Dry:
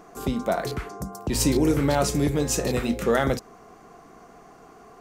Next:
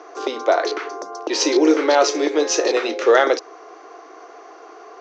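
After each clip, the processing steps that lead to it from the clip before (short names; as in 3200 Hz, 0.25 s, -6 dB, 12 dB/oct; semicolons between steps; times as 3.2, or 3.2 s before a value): Chebyshev band-pass 320–6200 Hz, order 5; gain +9 dB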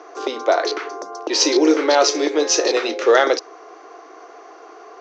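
dynamic EQ 4900 Hz, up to +5 dB, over -34 dBFS, Q 1.3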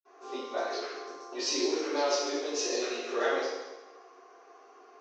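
reverb RT60 1.1 s, pre-delay 46 ms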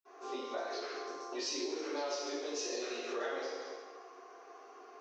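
compressor 3:1, threshold -39 dBFS, peak gain reduction 11.5 dB; gain +1 dB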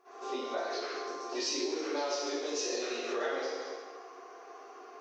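pre-echo 0.104 s -15.5 dB; gain +4 dB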